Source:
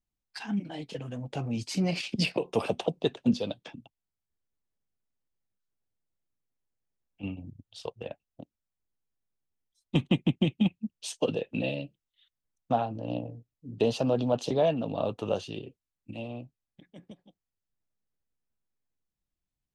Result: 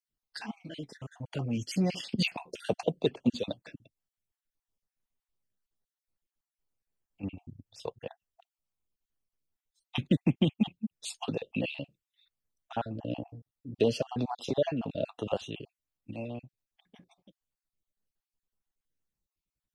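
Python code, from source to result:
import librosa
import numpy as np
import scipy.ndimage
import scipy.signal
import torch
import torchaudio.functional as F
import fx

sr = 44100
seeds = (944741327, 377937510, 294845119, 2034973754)

y = fx.spec_dropout(x, sr, seeds[0], share_pct=36)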